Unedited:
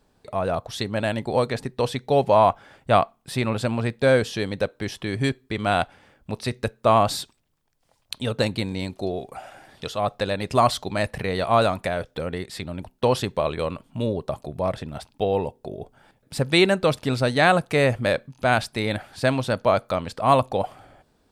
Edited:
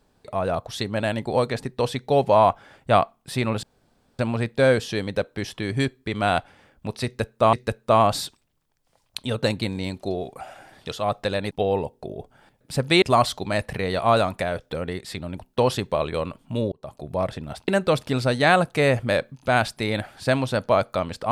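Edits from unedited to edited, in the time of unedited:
3.63 s: insert room tone 0.56 s
6.49–6.97 s: loop, 2 plays
14.17–14.57 s: fade in linear
15.13–16.64 s: move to 10.47 s

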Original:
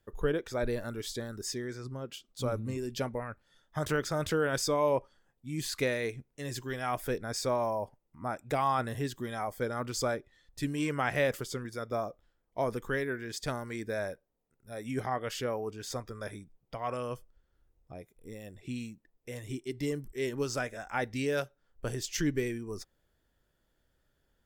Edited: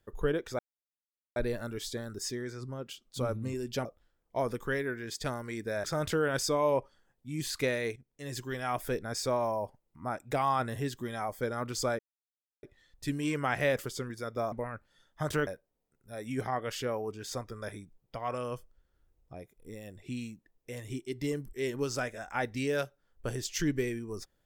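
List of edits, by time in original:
0.59 s: insert silence 0.77 s
3.08–4.03 s: swap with 12.07–14.06 s
6.15–6.57 s: fade in, from -15.5 dB
10.18 s: insert silence 0.64 s

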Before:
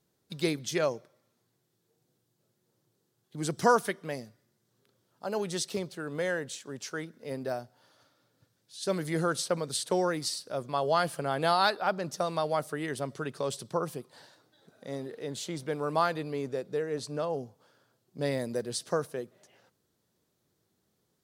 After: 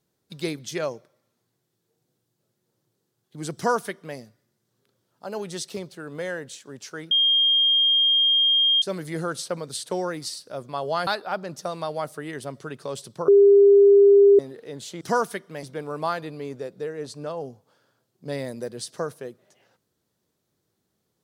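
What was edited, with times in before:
3.55–4.17 s: copy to 15.56 s
7.11–8.82 s: bleep 3.22 kHz -16 dBFS
11.07–11.62 s: delete
13.83–14.94 s: bleep 401 Hz -10 dBFS

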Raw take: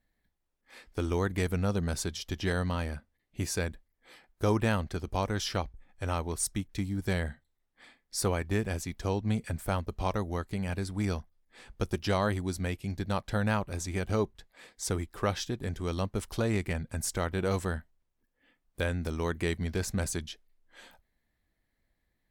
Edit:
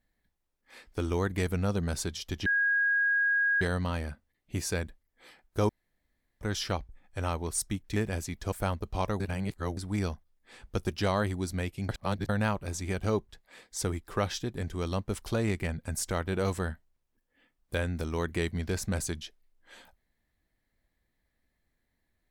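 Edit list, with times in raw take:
2.46 s: add tone 1.64 kHz -23 dBFS 1.15 s
4.54–5.26 s: room tone
6.81–8.54 s: delete
9.10–9.58 s: delete
10.26–10.83 s: reverse
12.95–13.35 s: reverse

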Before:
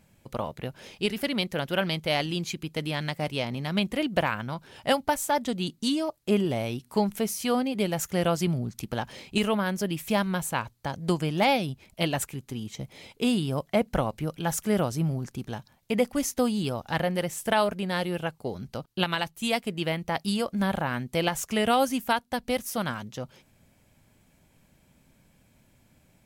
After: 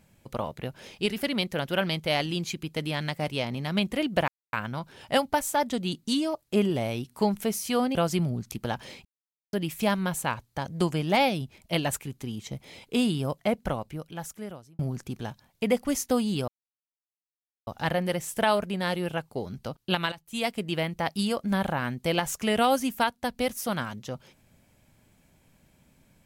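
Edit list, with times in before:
4.28 s: insert silence 0.25 s
7.70–8.23 s: delete
9.33–9.81 s: mute
13.45–15.07 s: fade out
16.76 s: insert silence 1.19 s
19.21–19.63 s: fade in, from -16.5 dB

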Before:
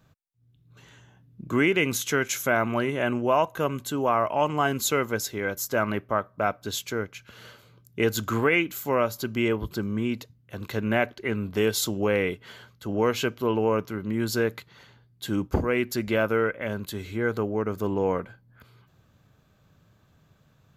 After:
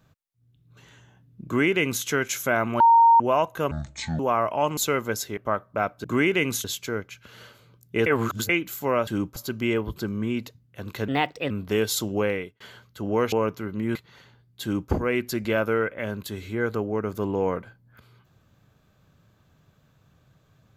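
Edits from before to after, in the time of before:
1.45–2.05 s: copy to 6.68 s
2.80–3.20 s: bleep 924 Hz -11.5 dBFS
3.71–3.98 s: speed 56%
4.56–4.81 s: delete
5.41–6.01 s: delete
8.10–8.53 s: reverse
10.83–11.36 s: speed 126%
12.08–12.46 s: fade out
13.18–13.63 s: delete
14.26–14.58 s: delete
15.25–15.54 s: copy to 9.11 s

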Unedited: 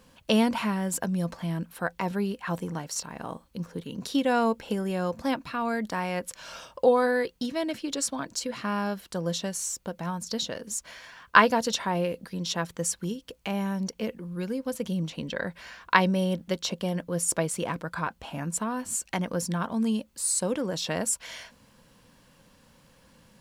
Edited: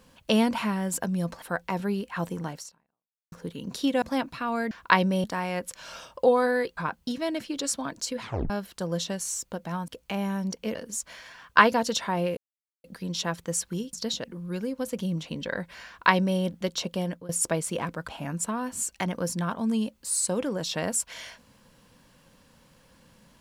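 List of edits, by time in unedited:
1.42–1.73 s: delete
2.88–3.63 s: fade out exponential
4.33–5.15 s: delete
8.55 s: tape stop 0.29 s
10.22–10.53 s: swap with 13.24–14.11 s
12.15 s: insert silence 0.47 s
15.74–16.27 s: copy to 5.84 s
16.86–17.16 s: fade out equal-power, to -20.5 dB
17.95–18.21 s: move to 7.37 s

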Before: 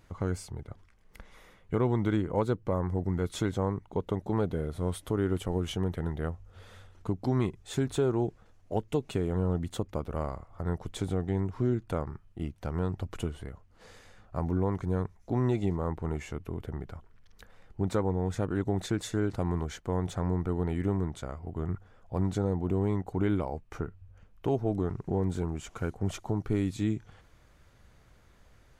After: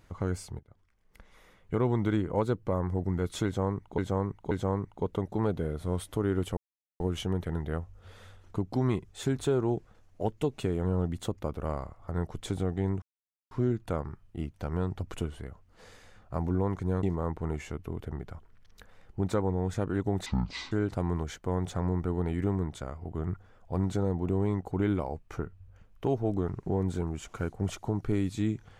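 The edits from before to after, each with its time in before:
0.59–1.85 s: fade in, from -18 dB
3.45–3.98 s: loop, 3 plays
5.51 s: insert silence 0.43 s
11.53 s: insert silence 0.49 s
15.05–15.64 s: delete
18.87–19.13 s: speed 57%

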